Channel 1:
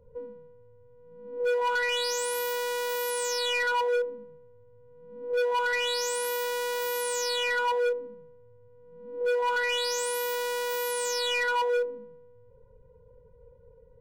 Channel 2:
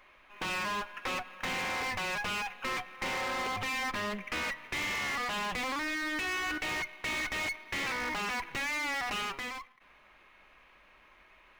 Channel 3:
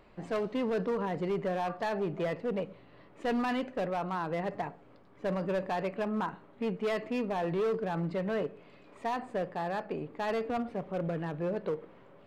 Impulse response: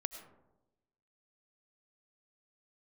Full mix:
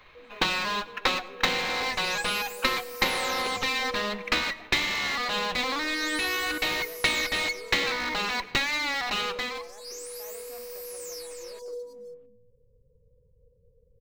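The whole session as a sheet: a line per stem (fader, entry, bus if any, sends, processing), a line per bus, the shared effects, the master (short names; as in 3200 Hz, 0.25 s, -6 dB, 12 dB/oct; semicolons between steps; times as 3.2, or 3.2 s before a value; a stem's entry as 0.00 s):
-5.0 dB, 0.00 s, no send, echo send -6 dB, elliptic band-stop 770–4700 Hz; bell 1200 Hz -12.5 dB 2.5 oct
+0.5 dB, 0.00 s, send -5.5 dB, no echo send, thirty-one-band EQ 100 Hz -10 dB, 4000 Hz +11 dB, 10000 Hz -8 dB; transient shaper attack +9 dB, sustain -5 dB
-17.5 dB, 0.00 s, no send, no echo send, HPF 300 Hz 24 dB/oct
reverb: on, RT60 1.0 s, pre-delay 60 ms
echo: echo 0.314 s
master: dry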